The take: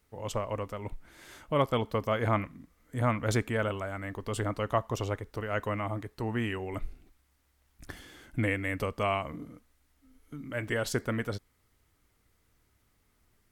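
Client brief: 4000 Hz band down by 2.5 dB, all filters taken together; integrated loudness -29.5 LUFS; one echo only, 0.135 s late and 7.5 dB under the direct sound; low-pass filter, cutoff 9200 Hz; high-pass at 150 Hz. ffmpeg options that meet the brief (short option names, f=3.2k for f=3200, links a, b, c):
-af "highpass=150,lowpass=9.2k,equalizer=f=4k:t=o:g=-3.5,aecho=1:1:135:0.422,volume=3.5dB"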